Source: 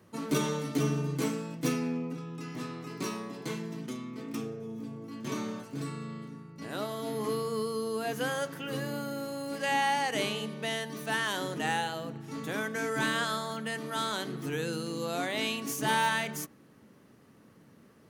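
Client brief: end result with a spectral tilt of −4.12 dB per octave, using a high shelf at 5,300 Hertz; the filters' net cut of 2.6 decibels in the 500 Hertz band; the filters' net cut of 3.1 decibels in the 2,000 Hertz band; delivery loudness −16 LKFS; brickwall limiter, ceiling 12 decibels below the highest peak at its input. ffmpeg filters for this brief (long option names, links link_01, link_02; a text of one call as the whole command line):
ffmpeg -i in.wav -af "equalizer=frequency=500:width_type=o:gain=-3,equalizer=frequency=2000:width_type=o:gain=-5,highshelf=frequency=5300:gain=9,volume=21dB,alimiter=limit=-5dB:level=0:latency=1" out.wav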